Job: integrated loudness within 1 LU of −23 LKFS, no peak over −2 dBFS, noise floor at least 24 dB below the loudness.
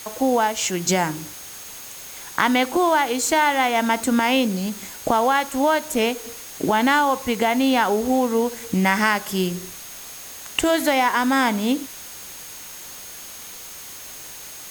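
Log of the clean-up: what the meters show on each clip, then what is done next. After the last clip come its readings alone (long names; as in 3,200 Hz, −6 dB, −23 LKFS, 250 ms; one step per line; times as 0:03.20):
interfering tone 6,500 Hz; level of the tone −43 dBFS; background noise floor −38 dBFS; target noise floor −45 dBFS; integrated loudness −20.5 LKFS; sample peak −4.5 dBFS; target loudness −23.0 LKFS
→ notch filter 6,500 Hz, Q 30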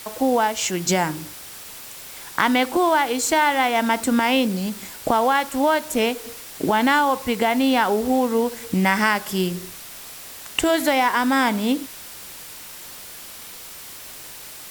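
interfering tone none found; background noise floor −39 dBFS; target noise floor −45 dBFS
→ noise reduction from a noise print 6 dB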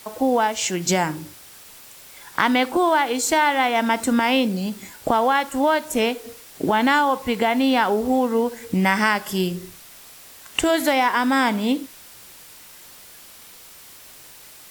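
background noise floor −45 dBFS; integrated loudness −20.5 LKFS; sample peak −4.5 dBFS; target loudness −23.0 LKFS
→ level −2.5 dB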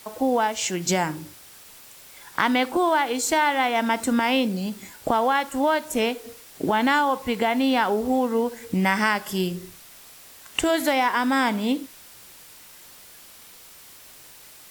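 integrated loudness −23.0 LKFS; sample peak −7.0 dBFS; background noise floor −47 dBFS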